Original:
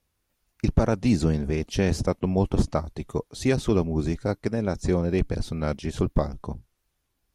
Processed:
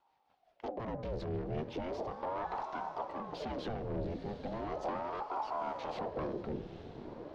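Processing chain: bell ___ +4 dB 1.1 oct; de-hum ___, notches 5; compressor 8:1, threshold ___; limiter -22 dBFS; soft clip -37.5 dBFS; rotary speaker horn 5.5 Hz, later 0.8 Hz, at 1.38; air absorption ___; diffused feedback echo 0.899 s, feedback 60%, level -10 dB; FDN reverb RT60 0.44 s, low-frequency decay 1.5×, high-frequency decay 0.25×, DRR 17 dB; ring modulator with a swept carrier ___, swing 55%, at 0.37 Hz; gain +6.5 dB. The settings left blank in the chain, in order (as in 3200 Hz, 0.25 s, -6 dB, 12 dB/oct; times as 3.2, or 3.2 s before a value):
3700 Hz, 222.1 Hz, -25 dBFS, 310 m, 560 Hz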